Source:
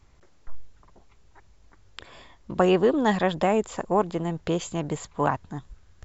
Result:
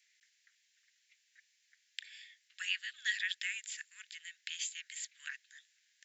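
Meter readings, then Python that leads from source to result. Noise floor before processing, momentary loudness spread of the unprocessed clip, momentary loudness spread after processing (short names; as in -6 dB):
-55 dBFS, 13 LU, 16 LU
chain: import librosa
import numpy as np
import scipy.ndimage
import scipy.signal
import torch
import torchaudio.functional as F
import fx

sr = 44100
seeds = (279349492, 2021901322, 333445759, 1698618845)

y = scipy.signal.sosfilt(scipy.signal.butter(12, 1700.0, 'highpass', fs=sr, output='sos'), x)
y = F.gain(torch.from_numpy(y), -1.0).numpy()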